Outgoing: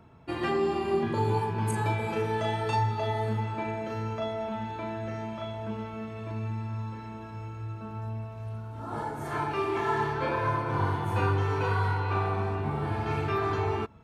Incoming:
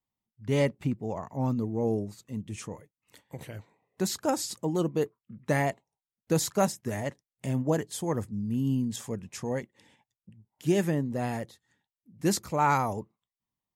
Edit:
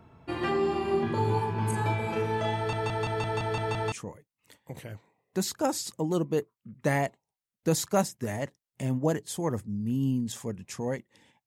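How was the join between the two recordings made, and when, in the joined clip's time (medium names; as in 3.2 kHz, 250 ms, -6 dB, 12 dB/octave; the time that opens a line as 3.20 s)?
outgoing
2.56 s: stutter in place 0.17 s, 8 plays
3.92 s: go over to incoming from 2.56 s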